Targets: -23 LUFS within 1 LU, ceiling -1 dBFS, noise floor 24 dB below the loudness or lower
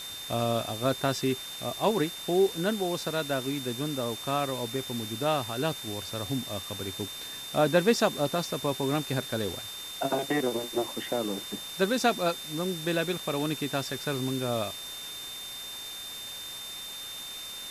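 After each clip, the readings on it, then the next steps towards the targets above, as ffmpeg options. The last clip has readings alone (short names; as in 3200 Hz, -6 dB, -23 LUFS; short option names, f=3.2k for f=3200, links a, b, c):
steady tone 3600 Hz; tone level -39 dBFS; noise floor -40 dBFS; noise floor target -54 dBFS; loudness -30.0 LUFS; peak -11.0 dBFS; loudness target -23.0 LUFS
-> -af "bandreject=f=3.6k:w=30"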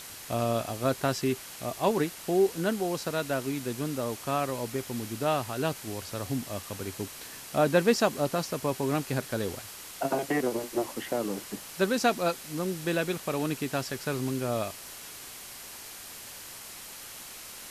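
steady tone none; noise floor -44 dBFS; noise floor target -54 dBFS
-> -af "afftdn=nr=10:nf=-44"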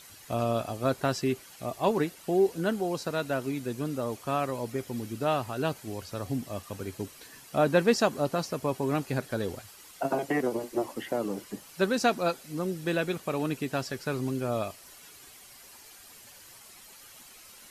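noise floor -51 dBFS; noise floor target -55 dBFS
-> -af "afftdn=nr=6:nf=-51"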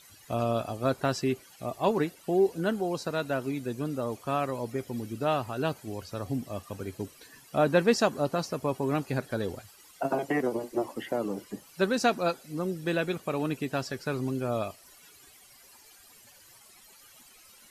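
noise floor -56 dBFS; loudness -30.5 LUFS; peak -11.5 dBFS; loudness target -23.0 LUFS
-> -af "volume=7.5dB"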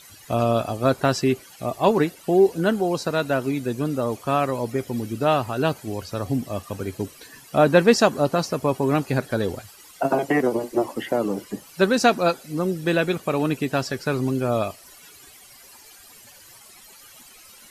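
loudness -23.0 LUFS; peak -4.0 dBFS; noise floor -48 dBFS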